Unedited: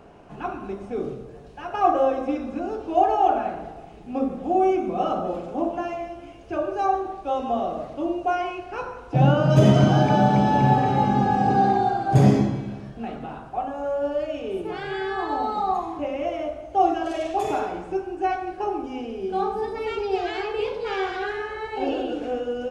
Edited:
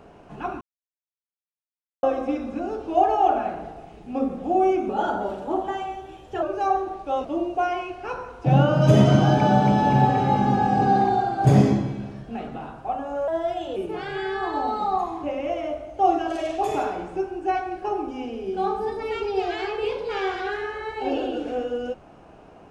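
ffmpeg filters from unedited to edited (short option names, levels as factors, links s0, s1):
-filter_complex "[0:a]asplit=8[s0][s1][s2][s3][s4][s5][s6][s7];[s0]atrim=end=0.61,asetpts=PTS-STARTPTS,afade=t=out:st=0.606:d=0.004:c=hsin[s8];[s1]atrim=start=0.61:end=2.03,asetpts=PTS-STARTPTS,volume=0[s9];[s2]atrim=start=2.03:end=4.894,asetpts=PTS-STARTPTS,afade=t=in:d=0.004:c=hsin[s10];[s3]atrim=start=4.89:end=6.61,asetpts=PTS-STARTPTS,asetrate=49392,aresample=44100[s11];[s4]atrim=start=6.606:end=7.432[s12];[s5]atrim=start=7.928:end=13.964[s13];[s6]atrim=start=13.96:end=14.52,asetpts=PTS-STARTPTS,asetrate=50715,aresample=44100[s14];[s7]atrim=start=14.516[s15];[s8][s9][s10]concat=n=3:v=0:a=1[s16];[s16][s11]acrossfade=d=0.004:c1=hsin:c2=hsin[s17];[s17][s12]acrossfade=d=0.004:c1=hsin:c2=hsin[s18];[s18][s13]acrossfade=d=0.004:c1=hsin:c2=hsin[s19];[s19][s14]acrossfade=d=0.004:c1=hsin:c2=hsin[s20];[s20][s15]acrossfade=d=0.004:c1=hsin:c2=hsin"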